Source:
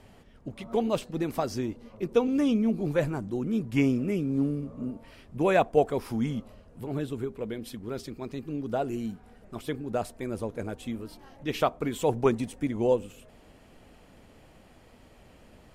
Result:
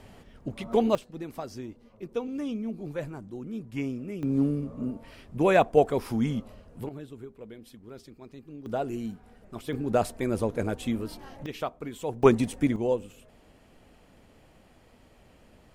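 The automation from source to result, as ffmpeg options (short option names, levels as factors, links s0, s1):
-af "asetnsamples=n=441:p=0,asendcmd='0.95 volume volume -8dB;4.23 volume volume 2dB;6.89 volume volume -10dB;8.66 volume volume -1dB;9.73 volume volume 5.5dB;11.46 volume volume -7dB;12.23 volume volume 5dB;12.76 volume volume -2.5dB',volume=1.5"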